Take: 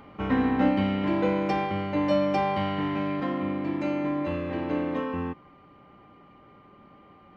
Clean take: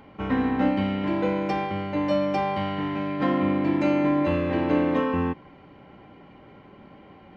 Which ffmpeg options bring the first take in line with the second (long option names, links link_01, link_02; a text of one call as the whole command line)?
ffmpeg -i in.wav -af "bandreject=frequency=1200:width=30,asetnsamples=nb_out_samples=441:pad=0,asendcmd='3.2 volume volume 6dB',volume=0dB" out.wav